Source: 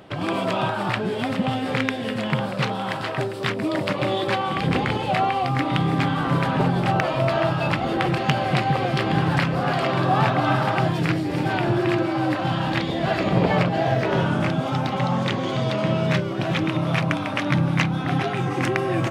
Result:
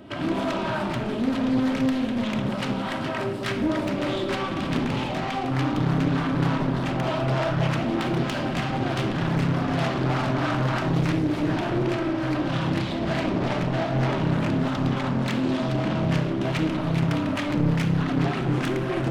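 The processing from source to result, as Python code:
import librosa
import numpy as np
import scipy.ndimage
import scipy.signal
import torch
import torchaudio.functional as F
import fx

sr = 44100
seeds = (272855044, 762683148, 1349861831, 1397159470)

y = fx.small_body(x, sr, hz=(230.0, 3000.0), ring_ms=45, db=9)
y = 10.0 ** (-23.0 / 20.0) * np.tanh(y / 10.0 ** (-23.0 / 20.0))
y = fx.harmonic_tremolo(y, sr, hz=3.3, depth_pct=50, crossover_hz=510.0)
y = fx.room_shoebox(y, sr, seeds[0], volume_m3=3300.0, walls='furnished', distance_m=2.8)
y = fx.doppler_dist(y, sr, depth_ms=0.53)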